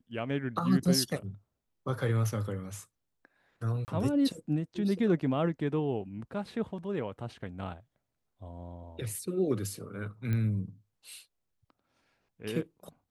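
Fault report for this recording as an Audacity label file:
3.850000	3.880000	dropout 29 ms
10.330000	10.330000	pop -21 dBFS

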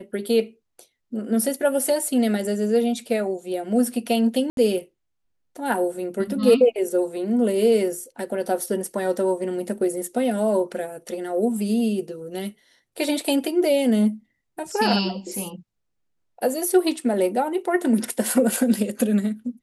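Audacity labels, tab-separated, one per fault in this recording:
4.500000	4.570000	dropout 72 ms

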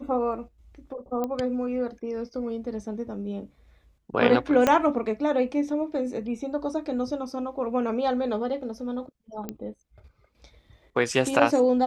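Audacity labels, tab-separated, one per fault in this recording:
1.240000	1.240000	pop -17 dBFS
4.670000	4.670000	pop -7 dBFS
9.490000	9.490000	pop -18 dBFS

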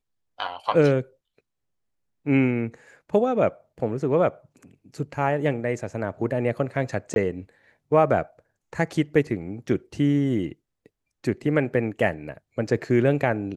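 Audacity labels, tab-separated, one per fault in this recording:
7.140000	7.160000	dropout 21 ms

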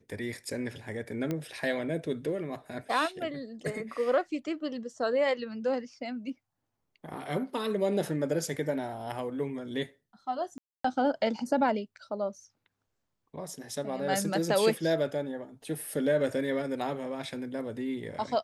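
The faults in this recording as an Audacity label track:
1.310000	1.310000	pop -19 dBFS
10.580000	10.840000	dropout 264 ms

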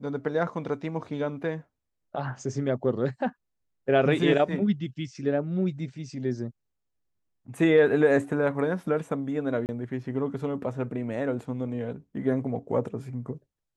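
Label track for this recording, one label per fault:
9.660000	9.690000	dropout 29 ms

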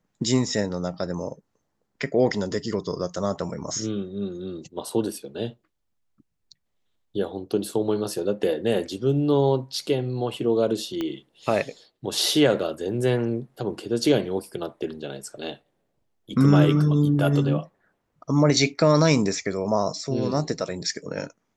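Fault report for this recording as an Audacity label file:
11.010000	11.010000	pop -16 dBFS

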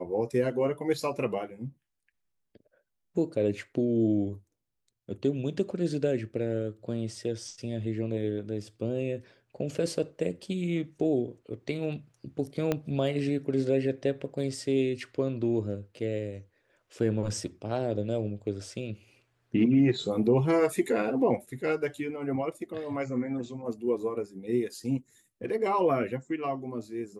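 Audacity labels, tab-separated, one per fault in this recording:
12.720000	12.720000	pop -14 dBFS

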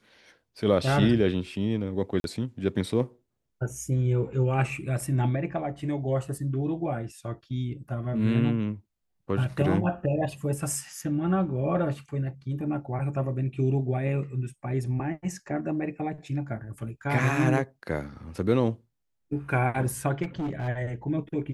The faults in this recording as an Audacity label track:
2.200000	2.240000	dropout 42 ms
20.220000	20.690000	clipped -27 dBFS

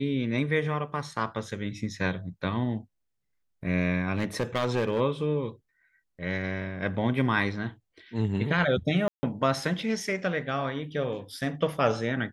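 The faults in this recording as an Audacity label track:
4.160000	5.010000	clipped -21 dBFS
9.080000	9.230000	dropout 150 ms

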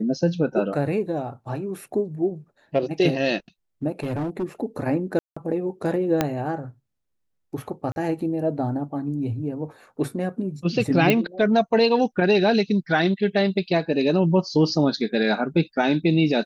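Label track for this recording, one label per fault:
3.920000	4.440000	clipped -23 dBFS
5.190000	5.370000	dropout 175 ms
6.210000	6.210000	pop -6 dBFS
7.920000	7.960000	dropout 41 ms
11.100000	11.100000	pop -6 dBFS

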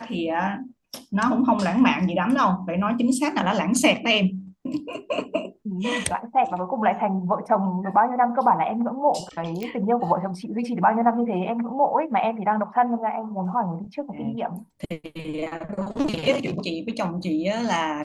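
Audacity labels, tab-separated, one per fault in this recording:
9.630000	9.630000	pop -18 dBFS

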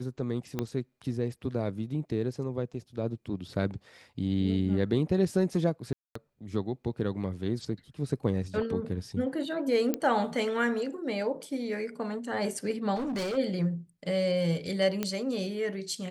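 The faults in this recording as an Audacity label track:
0.590000	0.590000	pop -17 dBFS
5.930000	6.150000	dropout 224 ms
9.940000	9.940000	pop -14 dBFS
12.950000	13.380000	clipped -29 dBFS
15.030000	15.030000	pop -15 dBFS

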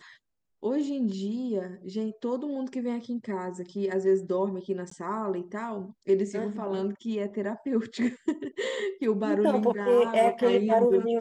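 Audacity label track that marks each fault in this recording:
4.900000	4.910000	dropout 14 ms

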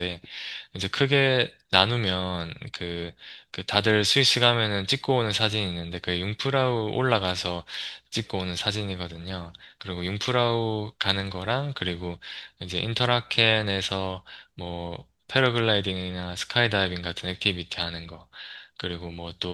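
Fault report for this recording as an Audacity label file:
10.250000	10.250000	dropout 2.5 ms

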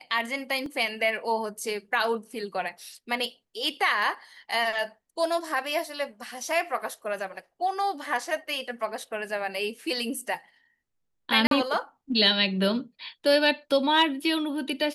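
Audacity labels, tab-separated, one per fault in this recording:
0.660000	0.660000	dropout 2.4 ms
11.470000	11.510000	dropout 42 ms

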